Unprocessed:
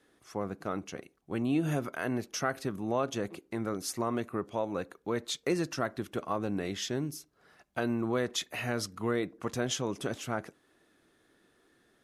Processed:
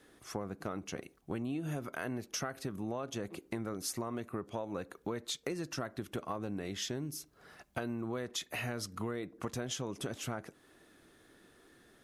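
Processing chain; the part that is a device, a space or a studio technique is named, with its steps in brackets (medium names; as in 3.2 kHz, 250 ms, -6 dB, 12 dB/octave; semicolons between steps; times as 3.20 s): ASMR close-microphone chain (bass shelf 110 Hz +5 dB; compression 6:1, threshold -40 dBFS, peak gain reduction 15.5 dB; treble shelf 9.2 kHz +4 dB); trim +4.5 dB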